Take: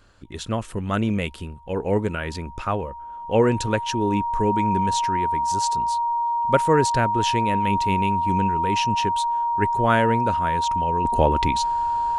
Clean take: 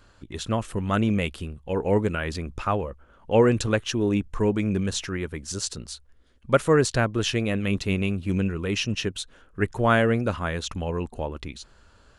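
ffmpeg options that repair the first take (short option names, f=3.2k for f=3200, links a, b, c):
-af "bandreject=f=940:w=30,asetnsamples=n=441:p=0,asendcmd='11.05 volume volume -11.5dB',volume=0dB"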